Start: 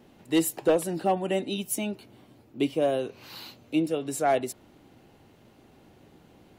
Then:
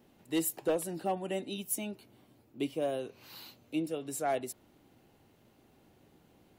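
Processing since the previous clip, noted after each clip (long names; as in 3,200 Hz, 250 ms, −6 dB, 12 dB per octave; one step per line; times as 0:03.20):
high-shelf EQ 10,000 Hz +9 dB
level −8 dB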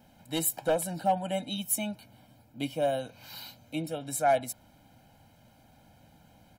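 comb filter 1.3 ms, depth 91%
level +3 dB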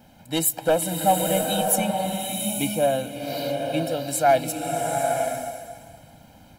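slow-attack reverb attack 870 ms, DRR 2 dB
level +6.5 dB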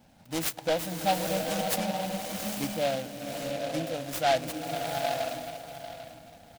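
repeating echo 795 ms, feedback 29%, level −13 dB
short delay modulated by noise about 2,600 Hz, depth 0.069 ms
level −7 dB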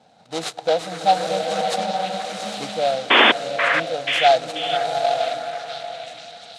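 loudspeaker in its box 150–8,700 Hz, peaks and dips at 270 Hz −6 dB, 460 Hz +9 dB, 730 Hz +10 dB, 1,300 Hz +6 dB, 3,900 Hz +9 dB
sound drawn into the spectrogram noise, 0:03.10–0:03.32, 210–3,600 Hz −14 dBFS
echo through a band-pass that steps 484 ms, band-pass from 1,600 Hz, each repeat 0.7 octaves, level −2.5 dB
level +1.5 dB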